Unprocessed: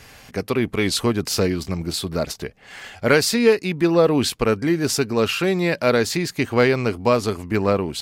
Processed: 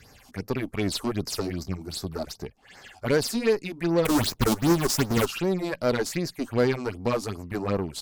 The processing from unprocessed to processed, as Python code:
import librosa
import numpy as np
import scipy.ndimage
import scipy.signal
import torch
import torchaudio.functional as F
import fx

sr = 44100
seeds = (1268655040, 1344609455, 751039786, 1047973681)

y = fx.halfwave_hold(x, sr, at=(4.05, 5.26))
y = fx.phaser_stages(y, sr, stages=6, low_hz=120.0, high_hz=3200.0, hz=2.6, feedback_pct=25)
y = fx.cheby_harmonics(y, sr, harmonics=(8,), levels_db=(-24,), full_scale_db=-5.0)
y = y * librosa.db_to_amplitude(-5.5)